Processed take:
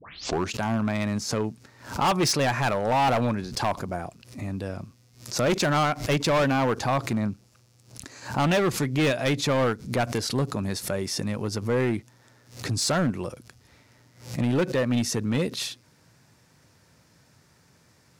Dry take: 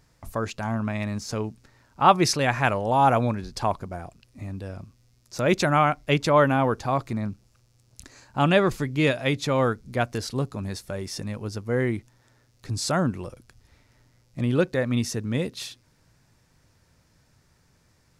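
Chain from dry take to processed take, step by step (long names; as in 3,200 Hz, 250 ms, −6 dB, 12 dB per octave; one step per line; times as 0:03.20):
turntable start at the beginning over 0.51 s
high-pass filter 110 Hz 12 dB per octave
in parallel at −2.5 dB: downward compressor, threshold −29 dBFS, peak gain reduction 17.5 dB
on the sum: gain into a clipping stage and back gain 19 dB
background raised ahead of every attack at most 130 dB per second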